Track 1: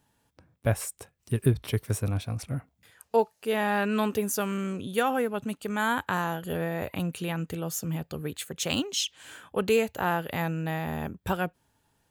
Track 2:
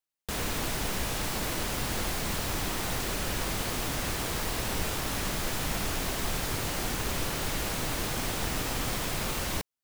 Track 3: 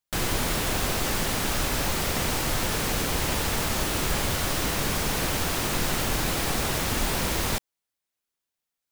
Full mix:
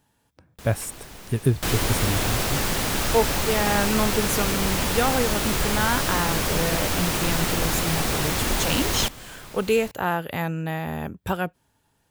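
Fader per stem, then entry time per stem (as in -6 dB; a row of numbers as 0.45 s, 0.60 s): +2.5 dB, -11.0 dB, +2.0 dB; 0.00 s, 0.30 s, 1.50 s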